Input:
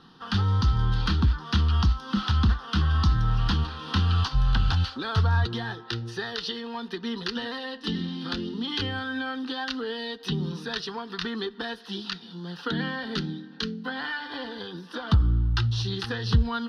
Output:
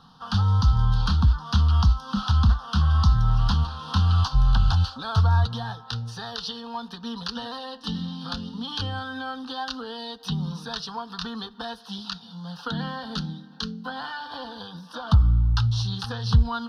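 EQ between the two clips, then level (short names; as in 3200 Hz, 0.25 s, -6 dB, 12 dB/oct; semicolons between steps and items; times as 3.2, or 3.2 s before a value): fixed phaser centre 870 Hz, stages 4; +4.0 dB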